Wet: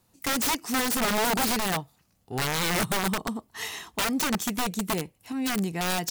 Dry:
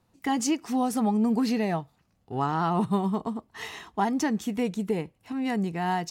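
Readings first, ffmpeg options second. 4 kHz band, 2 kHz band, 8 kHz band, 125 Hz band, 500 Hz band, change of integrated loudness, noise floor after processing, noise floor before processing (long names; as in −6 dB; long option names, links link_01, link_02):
+10.5 dB, +8.0 dB, +8.5 dB, −1.5 dB, −1.0 dB, +0.5 dB, −68 dBFS, −69 dBFS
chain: -af "crystalizer=i=2.5:c=0,aeval=exprs='(mod(10.6*val(0)+1,2)-1)/10.6':channel_layout=same"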